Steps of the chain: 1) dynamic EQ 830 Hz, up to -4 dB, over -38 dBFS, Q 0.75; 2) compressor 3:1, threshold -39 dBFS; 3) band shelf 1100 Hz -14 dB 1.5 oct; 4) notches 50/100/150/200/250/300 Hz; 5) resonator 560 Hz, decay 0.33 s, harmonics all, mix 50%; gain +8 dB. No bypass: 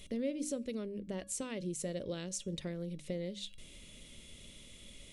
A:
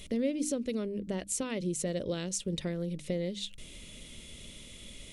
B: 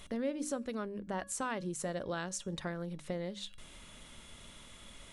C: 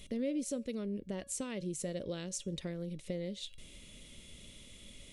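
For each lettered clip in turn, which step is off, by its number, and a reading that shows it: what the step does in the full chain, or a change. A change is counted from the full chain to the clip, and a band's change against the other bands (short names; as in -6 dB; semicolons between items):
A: 5, loudness change +5.5 LU; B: 3, 1 kHz band +13.0 dB; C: 4, momentary loudness spread change +1 LU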